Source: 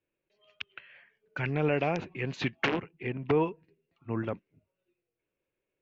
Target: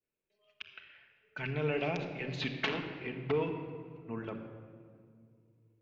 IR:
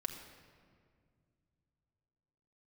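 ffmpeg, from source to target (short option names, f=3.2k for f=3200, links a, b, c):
-filter_complex "[0:a]adynamicequalizer=threshold=0.00224:dfrequency=3800:dqfactor=1.3:tfrequency=3800:tqfactor=1.3:attack=5:release=100:ratio=0.375:range=4:mode=boostabove:tftype=bell[a];[1:a]atrim=start_sample=2205[b];[a][b]afir=irnorm=-1:irlink=0,volume=-6dB"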